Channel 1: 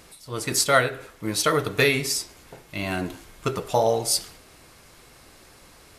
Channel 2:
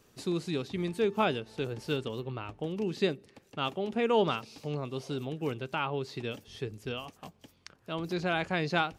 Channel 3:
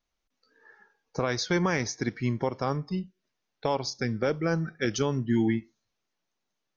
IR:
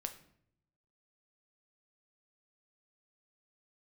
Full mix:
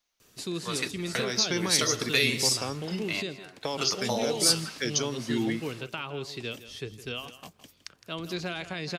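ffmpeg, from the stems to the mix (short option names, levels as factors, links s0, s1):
-filter_complex "[0:a]highpass=f=990:p=1,aemphasis=mode=reproduction:type=75fm,adelay=350,volume=1.33,asplit=2[s0][s1];[s1]volume=0.0794[s2];[1:a]bandreject=f=840:w=15,alimiter=limit=0.0708:level=0:latency=1:release=182,adelay=200,volume=0.841,asplit=2[s3][s4];[s4]volume=0.188[s5];[2:a]lowshelf=f=150:g=-12,volume=0.891,asplit=2[s6][s7];[s7]apad=whole_len=279491[s8];[s0][s8]sidechaingate=range=0.0158:threshold=0.001:ratio=16:detection=peak[s9];[s2][s5]amix=inputs=2:normalize=0,aecho=0:1:163:1[s10];[s9][s3][s6][s10]amix=inputs=4:normalize=0,highshelf=f=2000:g=9.5,acrossover=split=420|3000[s11][s12][s13];[s12]acompressor=threshold=0.02:ratio=6[s14];[s11][s14][s13]amix=inputs=3:normalize=0"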